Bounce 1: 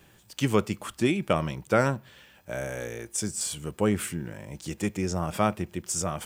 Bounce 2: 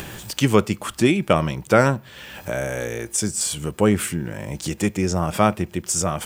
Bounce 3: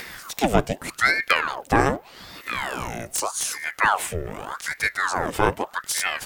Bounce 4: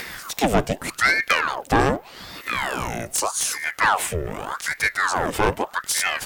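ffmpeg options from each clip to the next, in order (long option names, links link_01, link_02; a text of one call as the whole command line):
ffmpeg -i in.wav -af "acompressor=mode=upward:threshold=-29dB:ratio=2.5,volume=7dB" out.wav
ffmpeg -i in.wav -filter_complex "[0:a]acrossover=split=1600[link_01][link_02];[link_02]aeval=exprs='(mod(4.22*val(0)+1,2)-1)/4.22':channel_layout=same[link_03];[link_01][link_03]amix=inputs=2:normalize=0,aeval=exprs='val(0)*sin(2*PI*1100*n/s+1100*0.8/0.83*sin(2*PI*0.83*n/s))':channel_layout=same" out.wav
ffmpeg -i in.wav -af "asoftclip=type=tanh:threshold=-13dB,volume=3.5dB" -ar 48000 -c:a libopus -b:a 256k out.opus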